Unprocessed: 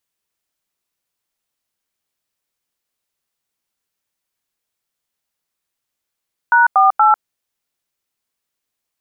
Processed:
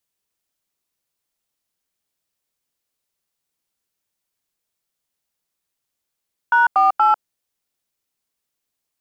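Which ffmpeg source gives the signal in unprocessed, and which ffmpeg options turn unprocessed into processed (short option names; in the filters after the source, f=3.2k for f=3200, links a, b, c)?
-f lavfi -i "aevalsrc='0.299*clip(min(mod(t,0.237),0.147-mod(t,0.237))/0.002,0,1)*(eq(floor(t/0.237),0)*(sin(2*PI*941*mod(t,0.237))+sin(2*PI*1477*mod(t,0.237)))+eq(floor(t/0.237),1)*(sin(2*PI*770*mod(t,0.237))+sin(2*PI*1209*mod(t,0.237)))+eq(floor(t/0.237),2)*(sin(2*PI*852*mod(t,0.237))+sin(2*PI*1336*mod(t,0.237))))':d=0.711:s=44100"
-filter_complex "[0:a]equalizer=f=1.6k:w=0.6:g=-3,acrossover=split=750|850|910[a][b][c][d];[b]asoftclip=type=hard:threshold=-28.5dB[e];[a][e][c][d]amix=inputs=4:normalize=0"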